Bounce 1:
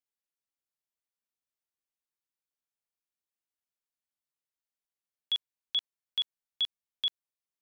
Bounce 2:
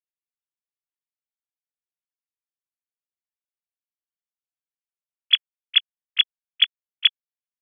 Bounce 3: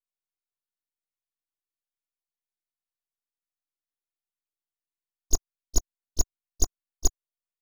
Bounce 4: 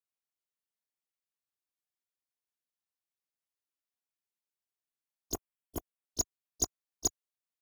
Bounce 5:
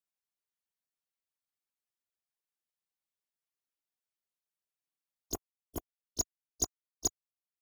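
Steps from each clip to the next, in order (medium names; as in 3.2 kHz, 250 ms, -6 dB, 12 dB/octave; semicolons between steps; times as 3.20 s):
formants replaced by sine waves; high-pass 1.3 kHz 12 dB/octave; tilt EQ +3 dB/octave; trim +7 dB
full-wave rectifier; comb 2.8 ms, depth 68%; trim -6.5 dB
high-pass 110 Hz; time-frequency box 5.34–6.06 s, 3.5–7.4 kHz -20 dB; trim -2.5 dB
reverb removal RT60 0.71 s; trim -1 dB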